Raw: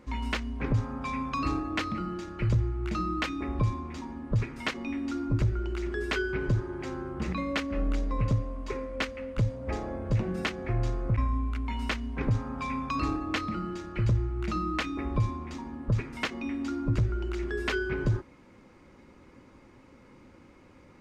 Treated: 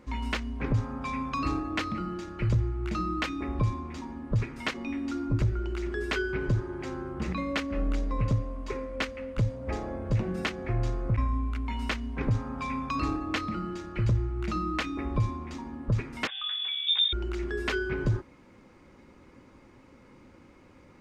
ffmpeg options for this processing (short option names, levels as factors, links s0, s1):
-filter_complex "[0:a]asettb=1/sr,asplit=3[s0][s1][s2];[s0]atrim=end=16.274[s3];[s1]atrim=start=16.27:end=17.13,asetpts=PTS-STARTPTS,afade=t=in:d=0.004:c=qsin,afade=t=out:st=0.856:d=0.004:c=qsin,lowpass=f=3100:t=q:w=0.5098,lowpass=f=3100:t=q:w=0.6013,lowpass=f=3100:t=q:w=0.9,lowpass=f=3100:t=q:w=2.563,afreqshift=-3700[s4];[s2]atrim=start=17.126[s5];[s3][s4]acrossfade=d=0.004:c1=hsin:c2=qsin[s6];[s6][s5]acrossfade=d=0.004:c1=qsin:c2=hsin"